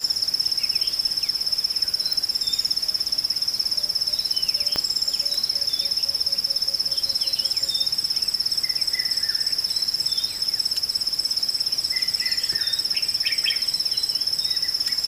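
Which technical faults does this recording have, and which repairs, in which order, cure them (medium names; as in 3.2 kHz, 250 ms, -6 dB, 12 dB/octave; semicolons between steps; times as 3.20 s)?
2.13 s: pop
4.76 s: pop -8 dBFS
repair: de-click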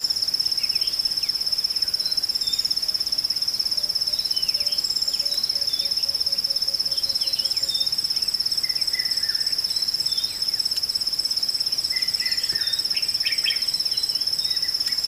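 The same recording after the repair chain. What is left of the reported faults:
4.76 s: pop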